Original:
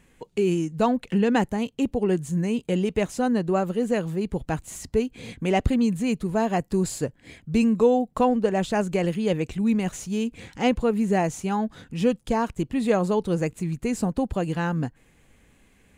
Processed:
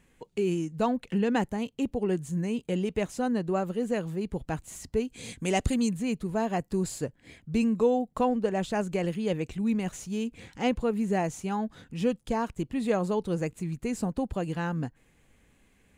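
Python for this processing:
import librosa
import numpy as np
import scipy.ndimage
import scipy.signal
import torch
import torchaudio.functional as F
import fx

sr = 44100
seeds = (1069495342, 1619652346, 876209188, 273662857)

y = fx.peak_eq(x, sr, hz=8200.0, db=14.0, octaves=1.7, at=(5.08, 5.89))
y = y * 10.0 ** (-5.0 / 20.0)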